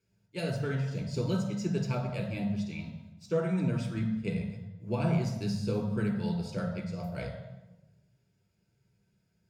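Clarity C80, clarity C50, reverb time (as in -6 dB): 7.5 dB, 4.5 dB, 1.0 s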